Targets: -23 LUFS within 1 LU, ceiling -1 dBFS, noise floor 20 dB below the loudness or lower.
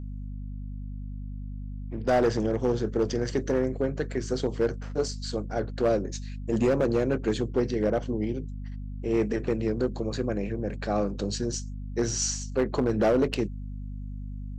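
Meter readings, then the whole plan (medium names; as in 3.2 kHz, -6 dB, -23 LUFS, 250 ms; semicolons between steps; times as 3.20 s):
clipped samples 1.1%; clipping level -17.5 dBFS; hum 50 Hz; highest harmonic 250 Hz; hum level -34 dBFS; loudness -28.0 LUFS; peak level -17.5 dBFS; loudness target -23.0 LUFS
-> clip repair -17.5 dBFS; de-hum 50 Hz, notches 5; trim +5 dB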